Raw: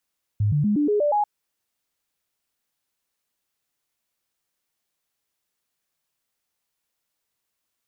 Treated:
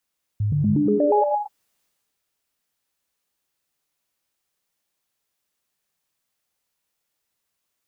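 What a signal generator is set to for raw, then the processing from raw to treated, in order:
stepped sine 104 Hz up, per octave 2, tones 7, 0.12 s, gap 0.00 s -17.5 dBFS
transient shaper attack -1 dB, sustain +6 dB; gated-style reverb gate 250 ms rising, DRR 4 dB

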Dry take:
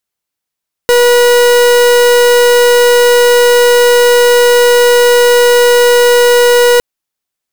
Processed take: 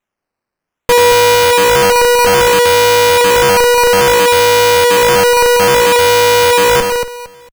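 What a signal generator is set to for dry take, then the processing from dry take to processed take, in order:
pulse 484 Hz, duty 42% -6.5 dBFS 5.91 s
comb filter that takes the minimum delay 3.9 ms; on a send: feedback delay 228 ms, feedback 24%, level -6 dB; on the sum: decimation with a swept rate 9×, swing 100% 0.6 Hz

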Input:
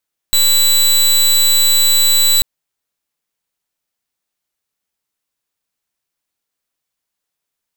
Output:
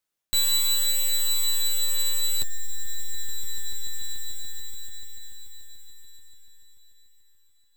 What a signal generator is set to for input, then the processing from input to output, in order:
pulse 3.96 kHz, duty 19% -11 dBFS 2.09 s
echo with a slow build-up 145 ms, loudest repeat 5, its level -17 dB; reverse; compression 6:1, threshold -19 dBFS; reverse; flange 0.49 Hz, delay 9.3 ms, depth 1.5 ms, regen -28%

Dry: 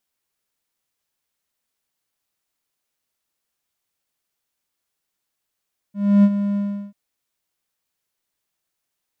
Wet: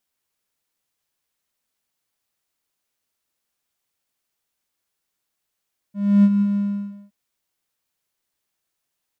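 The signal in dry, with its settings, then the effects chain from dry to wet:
ADSR triangle 202 Hz, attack 297 ms, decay 54 ms, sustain -10.5 dB, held 0.63 s, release 359 ms -6 dBFS
dynamic bell 660 Hz, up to -7 dB, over -37 dBFS, Q 0.84; on a send: delay 179 ms -10 dB

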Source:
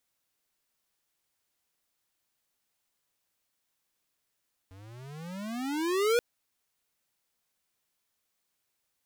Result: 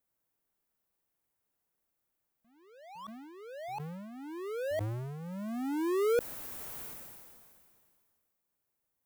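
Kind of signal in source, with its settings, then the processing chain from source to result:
gliding synth tone square, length 1.48 s, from 91.8 Hz, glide +29 st, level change +27 dB, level -23.5 dB
peaking EQ 4.2 kHz -13.5 dB 2.8 oct; ever faster or slower copies 155 ms, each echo +5 st, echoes 3, each echo -6 dB; decay stretcher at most 26 dB/s

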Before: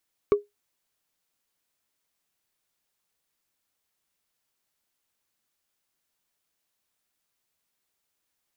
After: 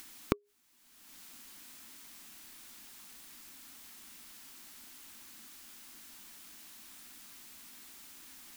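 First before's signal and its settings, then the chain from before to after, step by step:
wood hit, lowest mode 411 Hz, decay 0.17 s, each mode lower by 10.5 dB, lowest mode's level -11.5 dB
graphic EQ 125/250/500 Hz -10/+11/-11 dB; in parallel at +0.5 dB: upward compressor, threshold -32 dBFS; on the sum: inverted gate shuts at -19 dBFS, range -26 dB

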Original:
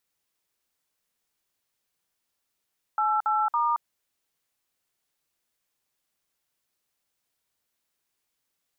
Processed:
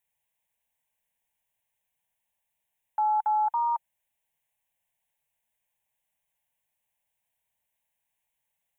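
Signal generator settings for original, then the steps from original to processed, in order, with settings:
DTMF "88*", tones 224 ms, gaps 55 ms, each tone -24 dBFS
peaking EQ 890 Hz +5 dB 0.2 oct; static phaser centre 1.3 kHz, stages 6

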